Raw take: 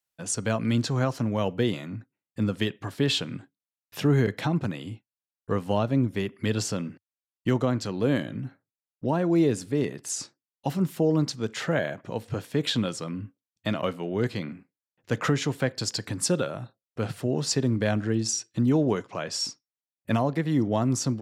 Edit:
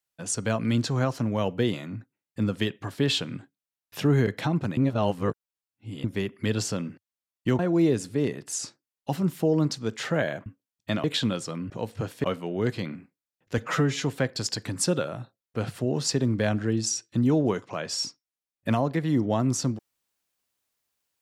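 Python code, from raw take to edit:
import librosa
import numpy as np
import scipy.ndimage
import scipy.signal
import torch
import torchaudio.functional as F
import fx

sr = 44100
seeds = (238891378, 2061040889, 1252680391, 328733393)

y = fx.edit(x, sr, fx.reverse_span(start_s=4.77, length_s=1.27),
    fx.cut(start_s=7.59, length_s=1.57),
    fx.swap(start_s=12.03, length_s=0.54, other_s=13.23, other_length_s=0.58),
    fx.stretch_span(start_s=15.15, length_s=0.3, factor=1.5), tone=tone)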